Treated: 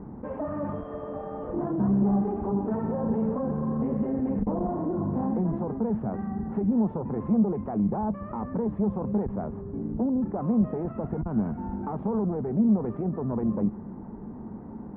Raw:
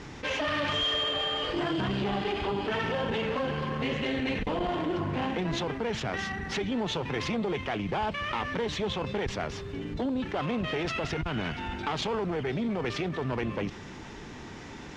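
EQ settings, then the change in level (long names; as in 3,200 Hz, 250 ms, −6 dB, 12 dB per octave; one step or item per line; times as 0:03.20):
low-pass filter 1,000 Hz 24 dB per octave
high-frequency loss of the air 200 metres
parametric band 210 Hz +13 dB 0.43 octaves
0.0 dB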